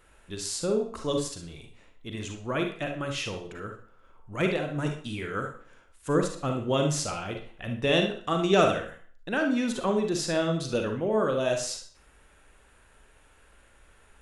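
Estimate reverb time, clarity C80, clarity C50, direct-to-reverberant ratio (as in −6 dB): 0.50 s, 13.0 dB, 5.5 dB, 3.5 dB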